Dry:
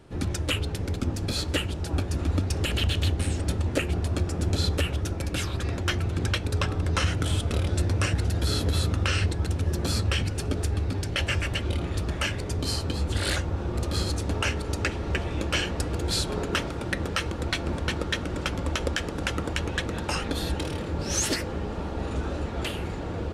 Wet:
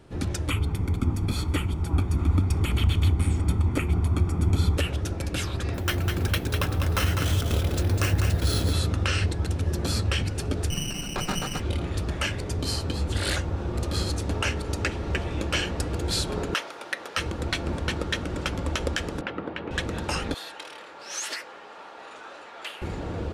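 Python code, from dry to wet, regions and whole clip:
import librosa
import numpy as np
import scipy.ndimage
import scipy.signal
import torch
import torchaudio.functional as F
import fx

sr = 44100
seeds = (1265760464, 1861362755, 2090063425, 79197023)

y = fx.chain(x, sr, fx.peak_eq(hz=5100.0, db=-9.5, octaves=1.5),
    fx.comb(ms=0.9, depth=0.63), at=(0.48, 4.77))
y = fx.chain(y, sr, fx.echo_feedback(ms=201, feedback_pct=18, wet_db=-5.5),
    fx.resample_bad(factor=3, down='none', up='hold'), at=(5.74, 8.73))
y = fx.chain(y, sr, fx.freq_invert(carrier_hz=3000),
    fx.running_max(window=9), at=(10.7, 11.6))
y = fx.chain(y, sr, fx.highpass(hz=660.0, slope=12),
    fx.peak_eq(hz=7900.0, db=-5.5, octaves=0.2), at=(16.54, 17.17))
y = fx.chain(y, sr, fx.highpass(hz=200.0, slope=12),
    fx.air_absorb(metres=400.0), at=(19.21, 19.71))
y = fx.chain(y, sr, fx.highpass(hz=950.0, slope=12),
    fx.high_shelf(hz=4200.0, db=-8.5), at=(20.34, 22.82))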